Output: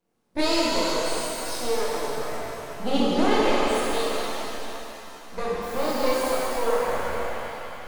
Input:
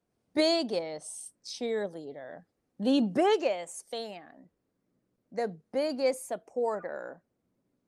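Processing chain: HPF 150 Hz 12 dB/oct; in parallel at -2.5 dB: compressor, threshold -35 dBFS, peak gain reduction 13 dB; on the sum: half-wave rectifier; 5.61–6.32 added noise white -49 dBFS; shimmer reverb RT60 3.4 s, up +7 st, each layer -8 dB, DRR -8 dB

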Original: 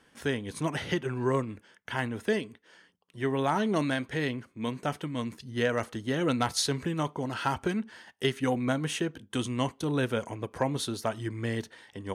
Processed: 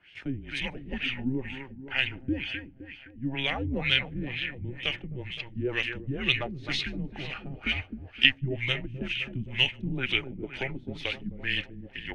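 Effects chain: resonant high shelf 1800 Hz +11 dB, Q 3; split-band echo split 2600 Hz, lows 0.259 s, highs 0.152 s, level -9 dB; LFO low-pass sine 2.1 Hz 330–3400 Hz; frequency shift -130 Hz; gain -6.5 dB

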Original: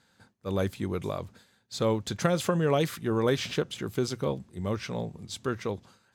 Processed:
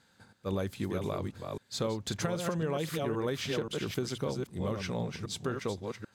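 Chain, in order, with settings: reverse delay 0.263 s, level -6 dB; compressor, threshold -29 dBFS, peak gain reduction 9.5 dB

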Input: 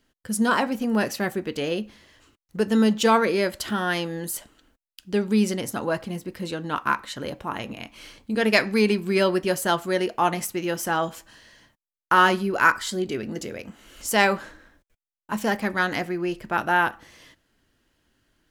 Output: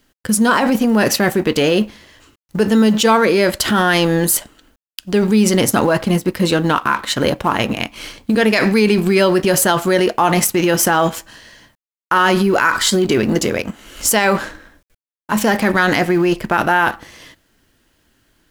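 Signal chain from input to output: G.711 law mismatch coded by A; in parallel at +3 dB: negative-ratio compressor -30 dBFS, ratio -1; on the sum: maximiser +8.5 dB; gain -2.5 dB

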